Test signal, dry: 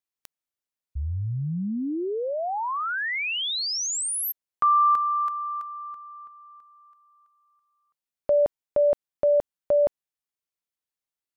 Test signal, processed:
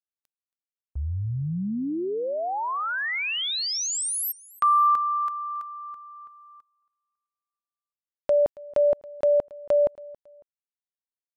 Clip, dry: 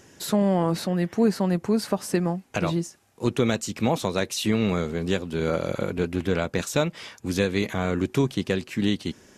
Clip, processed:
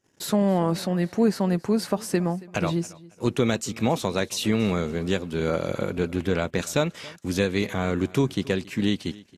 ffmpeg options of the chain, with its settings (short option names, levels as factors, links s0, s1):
-af "agate=range=0.0501:threshold=0.00224:ratio=16:release=37:detection=peak,aecho=1:1:276|552:0.0841|0.0261"